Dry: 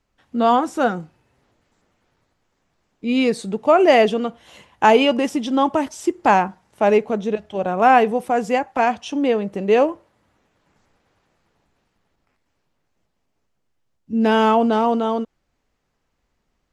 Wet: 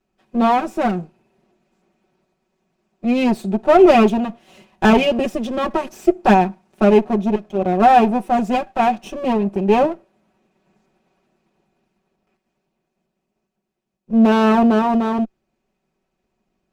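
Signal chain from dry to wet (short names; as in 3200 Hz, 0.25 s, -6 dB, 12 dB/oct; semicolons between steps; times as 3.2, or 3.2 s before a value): minimum comb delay 5.3 ms; small resonant body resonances 220/360/650/2500 Hz, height 11 dB, ringing for 25 ms; gain -4.5 dB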